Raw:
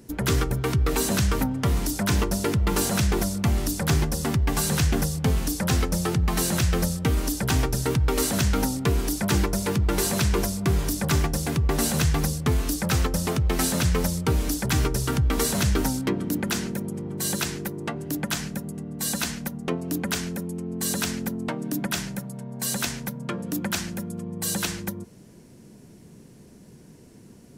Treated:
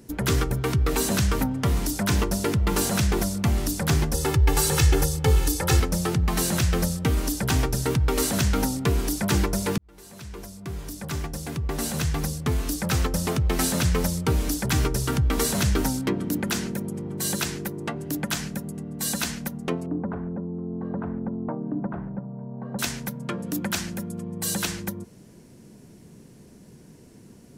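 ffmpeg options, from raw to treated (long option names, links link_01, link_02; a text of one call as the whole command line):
ffmpeg -i in.wav -filter_complex "[0:a]asettb=1/sr,asplit=3[link_01][link_02][link_03];[link_01]atrim=end=4.144[link_04];[link_02]atrim=start=4.14:end=5.8,asetpts=PTS-STARTPTS,afade=type=in:duration=0.004:curve=qsin,afade=type=out:start_time=1.656:duration=0.004:curve=qsin,aecho=1:1:2.3:0.98,atrim=end_sample=73206[link_05];[link_03]atrim=start=5.796[link_06];[link_04][link_05]acrossfade=duration=0.004:curve1=hsin:curve2=qsin[link_07];[link_07][link_06]acrossfade=duration=0.004:curve1=qsin:curve2=hsin,asettb=1/sr,asplit=3[link_08][link_09][link_10];[link_08]atrim=end=19.864[link_11];[link_09]atrim=start=19.86:end=22.79,asetpts=PTS-STARTPTS,afade=type=in:duration=0.004:curve=qsin,afade=type=out:start_time=2.926:duration=0.004:curve=qsin,lowpass=frequency=1100:width=0.5412,lowpass=frequency=1100:width=1.3066[link_12];[link_10]atrim=start=22.786[link_13];[link_11][link_12]acrossfade=duration=0.004:curve1=hsin:curve2=qsin[link_14];[link_14][link_13]acrossfade=duration=0.004:curve1=qsin:curve2=hsin,asplit=2[link_15][link_16];[link_15]atrim=end=9.78,asetpts=PTS-STARTPTS,afade=type=out:start_time=9.776:duration=0.004:curve=hsin[link_17];[link_16]atrim=start=9.78,asetpts=PTS-STARTPTS,afade=type=in:duration=3.48[link_18];[link_17][link_18]concat=n=2:v=0:a=1" out.wav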